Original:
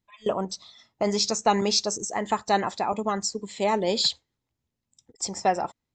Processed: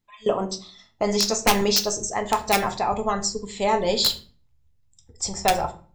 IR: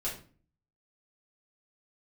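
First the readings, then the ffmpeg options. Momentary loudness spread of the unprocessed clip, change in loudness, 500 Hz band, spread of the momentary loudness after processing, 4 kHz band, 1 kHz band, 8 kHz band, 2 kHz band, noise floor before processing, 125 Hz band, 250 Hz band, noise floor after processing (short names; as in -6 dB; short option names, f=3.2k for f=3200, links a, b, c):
9 LU, +3.0 dB, +2.5 dB, 9 LU, +3.0 dB, +2.0 dB, +4.0 dB, +5.5 dB, -84 dBFS, +3.0 dB, +1.5 dB, -62 dBFS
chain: -filter_complex "[0:a]asubboost=boost=12:cutoff=74,aeval=exprs='(mod(4.47*val(0)+1,2)-1)/4.47':c=same,asplit=2[a][b];[1:a]atrim=start_sample=2205,afade=t=out:st=0.44:d=0.01,atrim=end_sample=19845[c];[b][c]afir=irnorm=-1:irlink=0,volume=-6dB[d];[a][d]amix=inputs=2:normalize=0"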